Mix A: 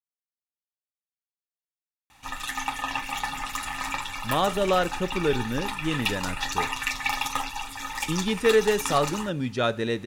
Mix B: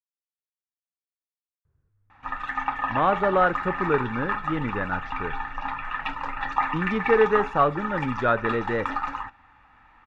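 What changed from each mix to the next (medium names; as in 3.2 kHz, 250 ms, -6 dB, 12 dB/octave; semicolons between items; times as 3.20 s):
speech: entry -1.35 s; master: add resonant low-pass 1.5 kHz, resonance Q 2.1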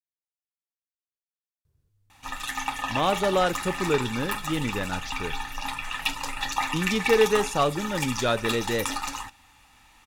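master: remove resonant low-pass 1.5 kHz, resonance Q 2.1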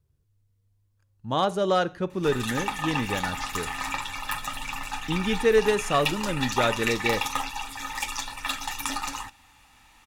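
speech: entry -1.65 s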